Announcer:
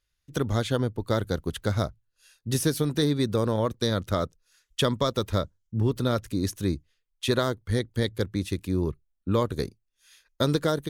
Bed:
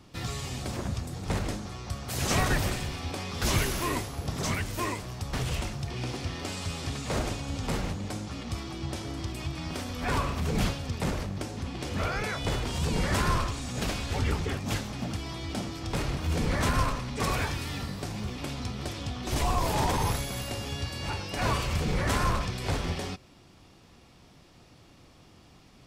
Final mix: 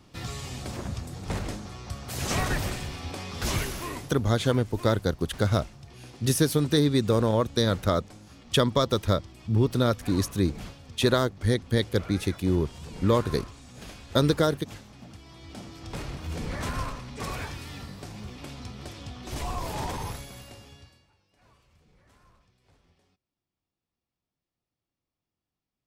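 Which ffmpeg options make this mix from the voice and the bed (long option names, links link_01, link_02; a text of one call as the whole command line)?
ffmpeg -i stem1.wav -i stem2.wav -filter_complex "[0:a]adelay=3750,volume=2dB[link_01];[1:a]volume=6dB,afade=type=out:start_time=3.47:duration=0.84:silence=0.266073,afade=type=in:start_time=15.25:duration=0.68:silence=0.421697,afade=type=out:start_time=19.86:duration=1.21:silence=0.0354813[link_02];[link_01][link_02]amix=inputs=2:normalize=0" out.wav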